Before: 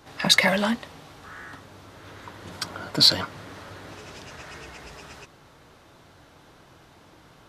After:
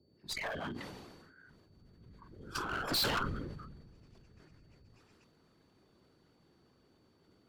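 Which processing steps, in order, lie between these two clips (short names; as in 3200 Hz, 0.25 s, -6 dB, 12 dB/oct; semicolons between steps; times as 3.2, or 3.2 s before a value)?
Doppler pass-by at 2.83, 9 m/s, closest 3.8 m; spectral noise reduction 26 dB; dynamic EQ 1500 Hz, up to +6 dB, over -57 dBFS, Q 0.73; transient shaper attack -8 dB, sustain -1 dB; reverse; upward compressor, threshold -54 dBFS; reverse; whisperiser; band noise 69–440 Hz -70 dBFS; one-sided clip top -39.5 dBFS, bottom -25 dBFS; whine 4500 Hz -80 dBFS; sustainer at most 35 dB/s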